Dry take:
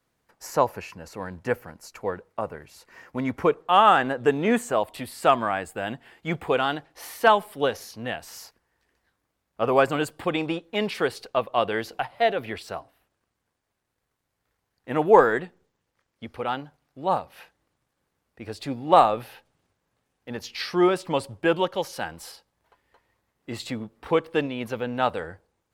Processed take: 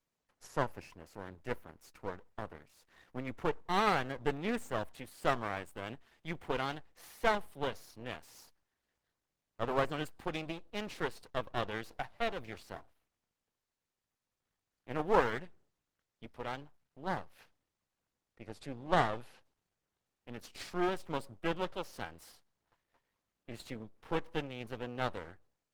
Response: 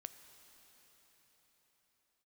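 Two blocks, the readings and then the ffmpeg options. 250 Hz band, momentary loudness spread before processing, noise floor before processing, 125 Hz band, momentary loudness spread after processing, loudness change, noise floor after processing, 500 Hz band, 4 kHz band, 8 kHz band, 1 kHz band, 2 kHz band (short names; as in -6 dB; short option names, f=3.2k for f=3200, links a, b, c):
-12.0 dB, 19 LU, -79 dBFS, -7.5 dB, 18 LU, -12.5 dB, under -85 dBFS, -13.5 dB, -11.0 dB, -12.5 dB, -13.5 dB, -10.0 dB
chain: -af "aeval=exprs='max(val(0),0)':c=same,volume=-8dB" -ar 48000 -c:a libopus -b:a 16k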